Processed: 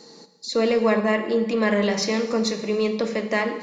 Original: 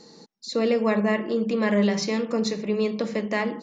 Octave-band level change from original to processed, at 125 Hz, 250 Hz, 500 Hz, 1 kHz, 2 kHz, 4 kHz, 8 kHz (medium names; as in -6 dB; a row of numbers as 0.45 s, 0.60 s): -1.5 dB, 0.0 dB, +3.0 dB, +3.5 dB, +3.5 dB, +4.0 dB, no reading